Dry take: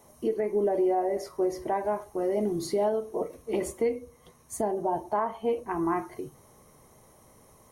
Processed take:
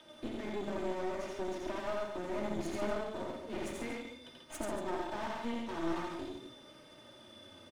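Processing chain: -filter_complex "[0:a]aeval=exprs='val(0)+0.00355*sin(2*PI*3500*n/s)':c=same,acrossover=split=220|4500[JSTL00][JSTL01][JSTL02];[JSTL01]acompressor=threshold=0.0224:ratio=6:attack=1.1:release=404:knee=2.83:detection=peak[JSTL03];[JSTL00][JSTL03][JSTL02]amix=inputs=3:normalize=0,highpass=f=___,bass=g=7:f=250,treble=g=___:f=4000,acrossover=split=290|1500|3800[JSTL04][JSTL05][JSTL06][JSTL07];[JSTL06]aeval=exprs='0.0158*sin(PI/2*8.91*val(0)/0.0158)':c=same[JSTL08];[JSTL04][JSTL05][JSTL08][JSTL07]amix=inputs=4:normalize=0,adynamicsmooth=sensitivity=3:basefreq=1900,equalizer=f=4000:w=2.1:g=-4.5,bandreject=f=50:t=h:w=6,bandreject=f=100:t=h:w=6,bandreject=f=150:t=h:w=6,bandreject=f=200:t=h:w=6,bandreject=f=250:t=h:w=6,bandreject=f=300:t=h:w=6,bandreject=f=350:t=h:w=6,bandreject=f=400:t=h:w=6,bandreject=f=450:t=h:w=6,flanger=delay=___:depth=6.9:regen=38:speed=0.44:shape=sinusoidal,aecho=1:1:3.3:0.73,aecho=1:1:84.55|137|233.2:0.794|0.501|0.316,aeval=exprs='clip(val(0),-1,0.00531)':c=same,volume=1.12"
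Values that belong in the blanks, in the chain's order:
170, 9, 6.4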